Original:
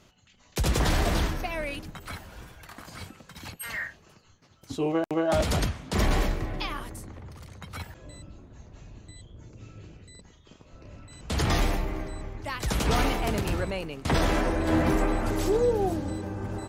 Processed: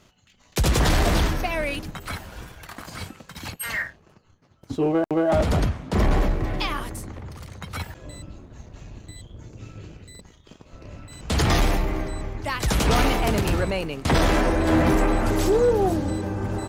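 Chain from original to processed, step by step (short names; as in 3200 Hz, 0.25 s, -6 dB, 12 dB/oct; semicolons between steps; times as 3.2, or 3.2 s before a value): 3.82–6.44 high shelf 2100 Hz -11 dB; sample leveller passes 1; gain +2.5 dB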